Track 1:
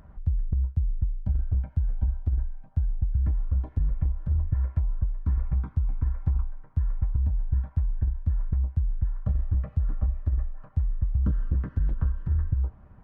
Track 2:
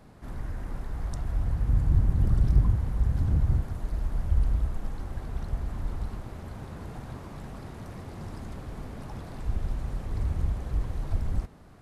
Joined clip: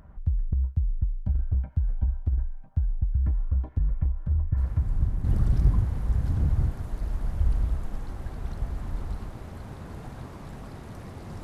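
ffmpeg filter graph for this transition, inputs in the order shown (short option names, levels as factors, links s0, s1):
-filter_complex "[1:a]asplit=2[s0][s1];[0:a]apad=whole_dur=11.43,atrim=end=11.43,atrim=end=5.242[s2];[s1]atrim=start=2.148:end=8.34[s3];[s0]atrim=start=1.48:end=2.15,asetpts=PTS-STARTPTS,volume=0.473,afade=t=in:d=0.004:c=hsin,afade=t=out:st=0.666:d=0.004:c=hsin,adelay=201537S[s4];[s2][s3]acrossfade=d=0.004:c1=hsin:c2=hsin[s5];[s5][s4]amix=inputs=2:normalize=0"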